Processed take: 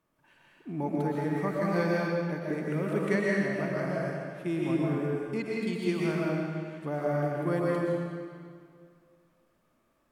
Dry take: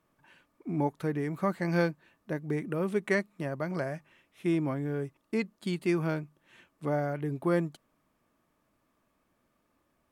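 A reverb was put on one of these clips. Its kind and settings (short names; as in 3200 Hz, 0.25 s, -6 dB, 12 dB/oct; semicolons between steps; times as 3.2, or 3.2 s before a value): digital reverb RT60 2.1 s, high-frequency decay 0.9×, pre-delay 85 ms, DRR -5 dB; gain -4 dB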